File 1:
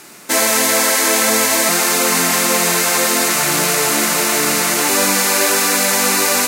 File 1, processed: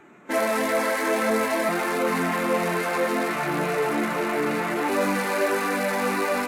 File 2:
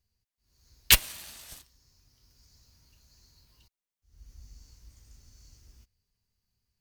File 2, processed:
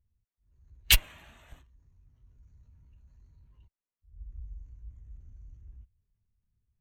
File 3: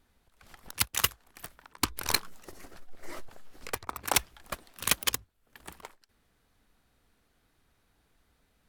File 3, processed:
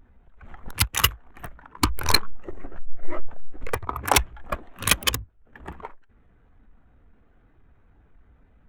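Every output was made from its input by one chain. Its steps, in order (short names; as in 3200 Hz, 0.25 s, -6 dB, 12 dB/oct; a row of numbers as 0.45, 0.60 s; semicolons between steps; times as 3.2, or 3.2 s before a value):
Wiener smoothing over 9 samples; power-law curve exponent 0.7; spectral expander 1.5:1; match loudness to -24 LUFS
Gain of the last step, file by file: -9.5, -5.5, +10.5 dB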